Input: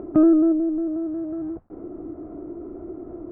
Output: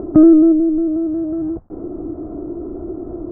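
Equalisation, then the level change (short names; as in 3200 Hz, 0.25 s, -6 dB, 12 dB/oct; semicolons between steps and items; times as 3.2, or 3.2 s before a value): LPF 1300 Hz 12 dB/oct; low shelf 120 Hz +5.5 dB; dynamic EQ 890 Hz, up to -7 dB, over -38 dBFS, Q 1.3; +7.5 dB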